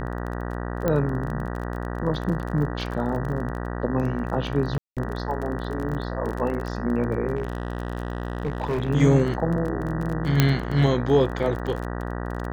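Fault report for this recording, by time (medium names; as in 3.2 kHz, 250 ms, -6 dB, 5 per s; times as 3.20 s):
buzz 60 Hz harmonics 32 -30 dBFS
crackle 24 per s -30 dBFS
0.88 s: pop -11 dBFS
4.78–4.97 s: dropout 187 ms
7.36–8.90 s: clipped -21.5 dBFS
10.40 s: pop -3 dBFS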